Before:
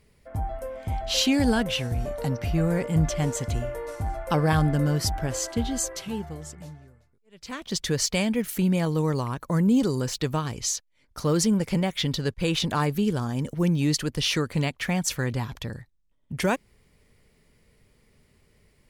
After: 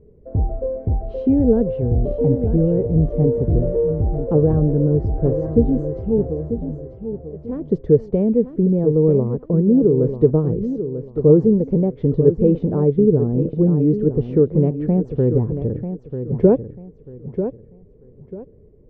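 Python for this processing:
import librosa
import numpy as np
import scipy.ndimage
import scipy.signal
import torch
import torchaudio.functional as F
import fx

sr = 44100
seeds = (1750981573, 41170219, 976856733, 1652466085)

p1 = fx.low_shelf(x, sr, hz=300.0, db=7.0)
p2 = fx.rider(p1, sr, range_db=3, speed_s=0.5)
p3 = fx.lowpass_res(p2, sr, hz=440.0, q=4.1)
p4 = p3 + fx.echo_feedback(p3, sr, ms=942, feedback_pct=27, wet_db=-9.5, dry=0)
y = p4 * librosa.db_to_amplitude(1.0)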